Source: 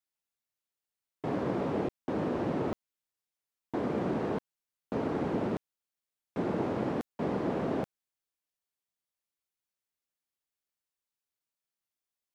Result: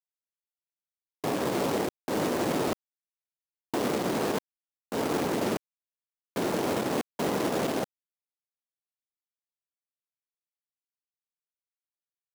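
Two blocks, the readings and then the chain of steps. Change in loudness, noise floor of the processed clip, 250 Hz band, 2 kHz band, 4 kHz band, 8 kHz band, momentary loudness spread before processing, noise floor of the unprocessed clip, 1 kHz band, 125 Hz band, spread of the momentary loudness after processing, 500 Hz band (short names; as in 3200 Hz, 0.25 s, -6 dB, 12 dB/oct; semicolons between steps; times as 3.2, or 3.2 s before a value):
+3.5 dB, under -85 dBFS, +2.0 dB, +8.0 dB, +15.0 dB, n/a, 7 LU, under -85 dBFS, +5.5 dB, -0.5 dB, 8 LU, +4.0 dB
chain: companded quantiser 4-bit; low shelf 210 Hz -9 dB; limiter -26 dBFS, peak gain reduction 7 dB; gain +7.5 dB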